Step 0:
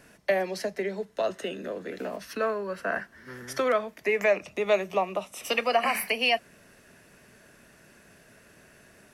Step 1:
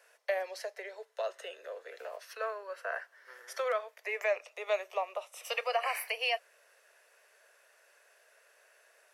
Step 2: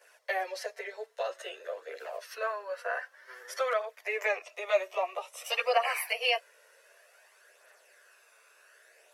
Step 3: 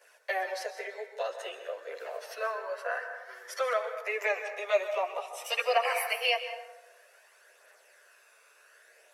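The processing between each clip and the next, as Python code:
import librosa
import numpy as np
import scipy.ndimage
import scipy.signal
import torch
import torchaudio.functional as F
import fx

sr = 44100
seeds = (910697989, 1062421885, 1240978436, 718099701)

y1 = scipy.signal.sosfilt(scipy.signal.ellip(4, 1.0, 70, 490.0, 'highpass', fs=sr, output='sos'), x)
y1 = y1 * librosa.db_to_amplitude(-6.5)
y2 = fx.chorus_voices(y1, sr, voices=2, hz=0.26, base_ms=12, depth_ms=2.3, mix_pct=65)
y2 = y2 * librosa.db_to_amplitude(6.5)
y3 = fx.rev_plate(y2, sr, seeds[0], rt60_s=1.0, hf_ratio=0.5, predelay_ms=115, drr_db=8.0)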